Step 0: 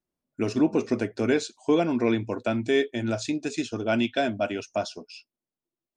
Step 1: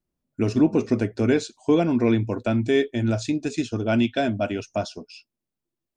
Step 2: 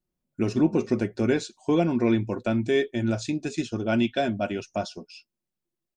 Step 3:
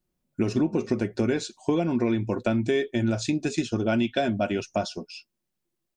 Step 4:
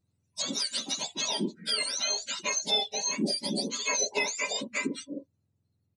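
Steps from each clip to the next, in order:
bass shelf 190 Hz +12 dB
comb 5.5 ms, depth 34%; trim -2.5 dB
compression, threshold -25 dBFS, peak gain reduction 9.5 dB; trim +4.5 dB
spectrum inverted on a logarithmic axis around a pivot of 1.2 kHz; resampled via 22.05 kHz

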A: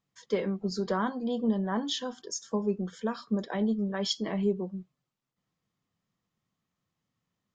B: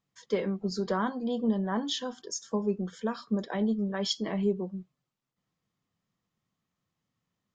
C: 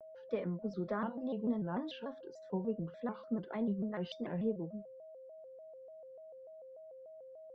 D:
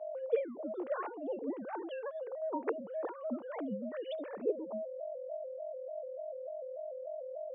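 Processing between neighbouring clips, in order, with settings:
no audible change
whistle 580 Hz -42 dBFS; distance through air 430 m; vibrato with a chosen wave square 3.4 Hz, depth 160 cents; trim -6.5 dB
formants replaced by sine waves; high-pass 420 Hz 12 dB/octave; treble shelf 2.8 kHz -9 dB; trim +5 dB

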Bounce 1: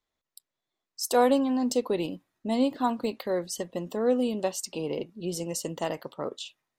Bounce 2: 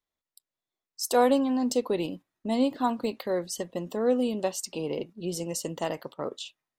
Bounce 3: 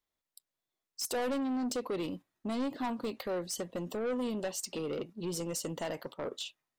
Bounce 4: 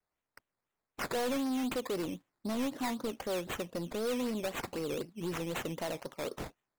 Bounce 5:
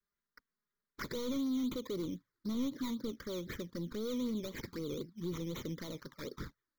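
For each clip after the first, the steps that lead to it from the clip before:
gate -43 dBFS, range -6 dB
in parallel at 0 dB: compression, threshold -32 dBFS, peak gain reduction 15 dB; on the sum: saturation -24 dBFS, distortion -9 dB; trim -5.5 dB
decimation with a swept rate 12×, swing 60% 3.9 Hz; vibrato 0.7 Hz 28 cents
touch-sensitive flanger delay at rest 5 ms, full sweep at -33 dBFS; static phaser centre 2.7 kHz, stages 6; trim +1 dB

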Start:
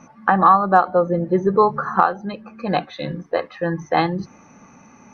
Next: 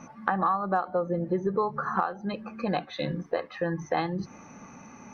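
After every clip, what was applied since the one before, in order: compression 3:1, threshold -27 dBFS, peak gain reduction 14 dB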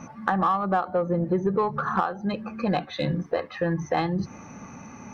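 peaking EQ 83 Hz +7 dB 1.7 oct; in parallel at -5.5 dB: saturation -25 dBFS, distortion -10 dB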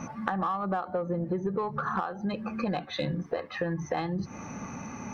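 compression 3:1, threshold -33 dBFS, peak gain reduction 11 dB; trim +3 dB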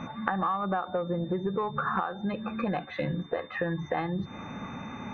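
resonant high shelf 3.1 kHz -13.5 dB, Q 1.5; whistle 3.6 kHz -53 dBFS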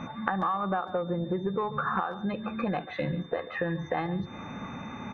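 speakerphone echo 140 ms, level -15 dB

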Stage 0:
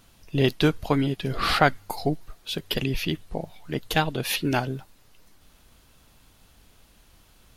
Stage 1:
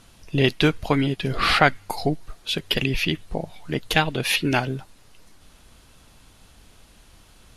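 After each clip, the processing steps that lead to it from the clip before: steep low-pass 12 kHz 36 dB/octave; dynamic bell 2.3 kHz, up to +6 dB, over -41 dBFS, Q 1.4; in parallel at -2.5 dB: compression, threshold -30 dBFS, peak gain reduction 17.5 dB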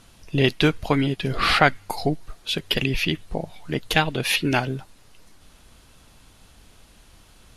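no audible change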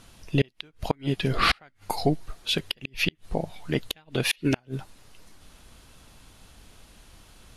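inverted gate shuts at -9 dBFS, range -36 dB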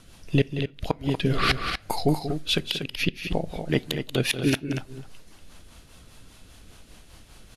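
rotary cabinet horn 5 Hz; loudspeakers at several distances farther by 63 m -11 dB, 82 m -8 dB; on a send at -20 dB: reverberation RT60 0.45 s, pre-delay 6 ms; on the sum: trim +3 dB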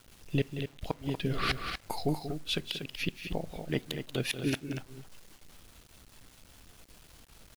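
bit crusher 8-bit; trim -8 dB

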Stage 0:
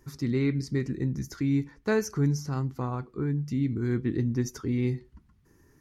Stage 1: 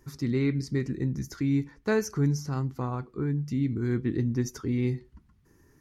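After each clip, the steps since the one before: no audible change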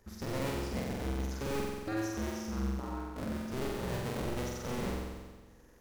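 cycle switcher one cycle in 2, inverted; compression 1.5:1, threshold -43 dBFS, peak gain reduction 8.5 dB; on a send: flutter echo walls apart 7.8 m, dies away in 1.4 s; on the sum: trim -5 dB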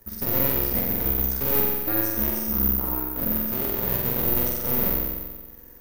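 partial rectifier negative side -7 dB; on a send at -13 dB: reverberation, pre-delay 3 ms; on the sum: careless resampling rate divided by 3×, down filtered, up zero stuff; trim +8 dB

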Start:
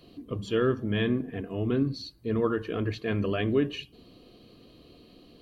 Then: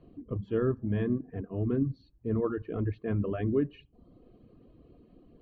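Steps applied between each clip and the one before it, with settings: reverb removal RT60 0.68 s; low-pass 1.7 kHz 12 dB/octave; tilt EQ -2 dB/octave; trim -5 dB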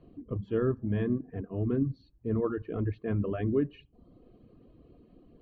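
no audible change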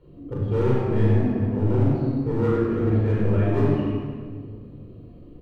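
hard clipper -27 dBFS, distortion -11 dB; on a send: reverse bouncing-ball echo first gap 40 ms, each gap 1.4×, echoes 5; on the sum: simulated room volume 2800 m³, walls mixed, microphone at 4.5 m

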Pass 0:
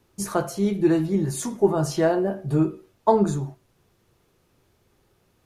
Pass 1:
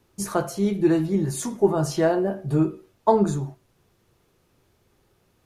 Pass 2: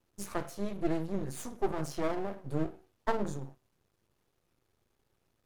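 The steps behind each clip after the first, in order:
no audible change
half-wave rectifier; wow and flutter 29 cents; trim -8 dB

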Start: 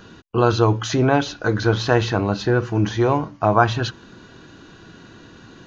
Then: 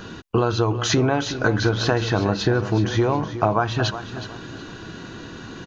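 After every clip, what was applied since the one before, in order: compression 10:1, threshold -23 dBFS, peak gain reduction 14.5 dB; on a send: feedback delay 368 ms, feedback 29%, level -12 dB; on the sum: trim +7 dB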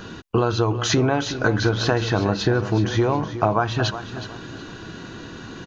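no audible change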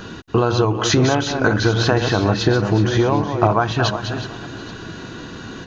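chunks repeated in reverse 248 ms, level -7.5 dB; trim +3 dB

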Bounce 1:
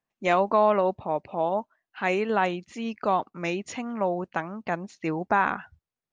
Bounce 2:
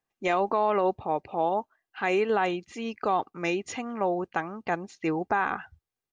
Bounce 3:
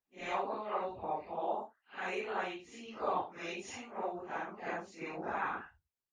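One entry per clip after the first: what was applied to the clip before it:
comb 2.5 ms, depth 35%; peak limiter -15 dBFS, peak gain reduction 5 dB
phase randomisation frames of 200 ms; harmonic-percussive split harmonic -14 dB; trim -3 dB

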